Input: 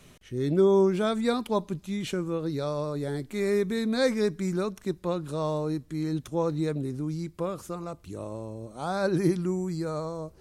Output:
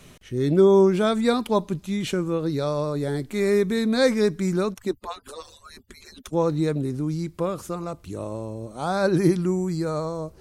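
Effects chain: 4.74–6.33 median-filter separation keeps percussive; gain +5 dB

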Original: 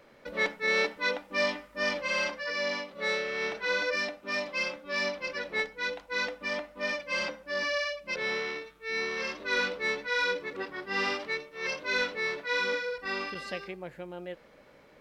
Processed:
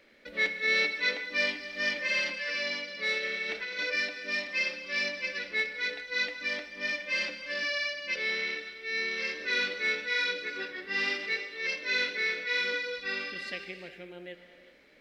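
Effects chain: graphic EQ 125/250/1000/2000/4000 Hz -9/+4/-9/+8/+6 dB; 3.18–3.79 negative-ratio compressor -31 dBFS, ratio -1; non-linear reverb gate 0.42 s flat, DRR 7.5 dB; gain -5 dB

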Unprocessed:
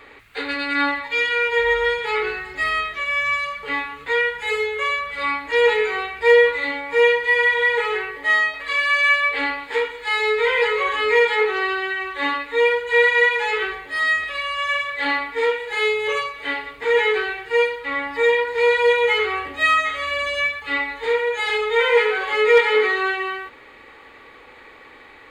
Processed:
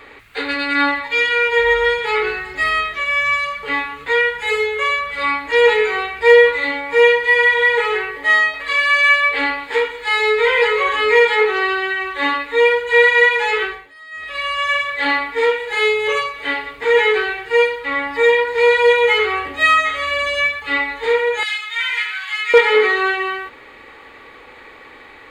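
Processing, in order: 13.59–14.46 dip -23 dB, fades 0.35 s; 21.43–22.54 Bessel high-pass 2100 Hz, order 4; gain +4 dB

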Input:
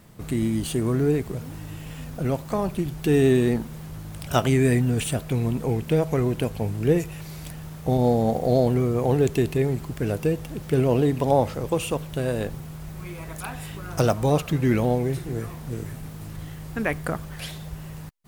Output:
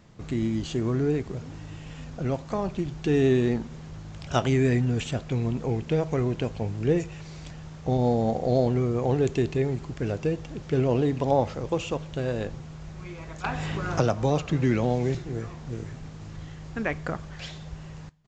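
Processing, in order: downsampling 16000 Hz; two-slope reverb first 0.29 s, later 2 s, from -18 dB, DRR 18 dB; 13.44–15.15 three-band squash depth 70%; gain -3 dB

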